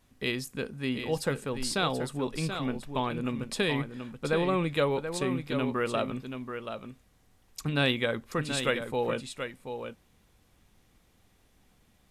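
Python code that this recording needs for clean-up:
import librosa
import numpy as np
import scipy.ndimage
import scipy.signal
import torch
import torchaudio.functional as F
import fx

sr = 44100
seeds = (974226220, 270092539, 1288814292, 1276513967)

y = fx.fix_echo_inverse(x, sr, delay_ms=731, level_db=-8.0)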